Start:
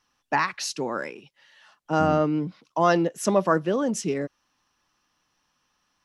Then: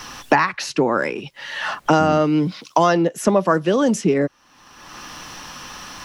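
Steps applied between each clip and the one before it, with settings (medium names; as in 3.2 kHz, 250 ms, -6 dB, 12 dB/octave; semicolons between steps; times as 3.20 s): three bands compressed up and down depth 100%; trim +6 dB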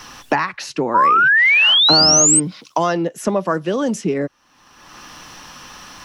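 painted sound rise, 0.94–2.40 s, 940–8600 Hz -10 dBFS; trim -2.5 dB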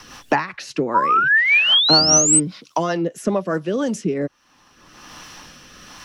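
rotary cabinet horn 5 Hz, later 1.2 Hz, at 3.30 s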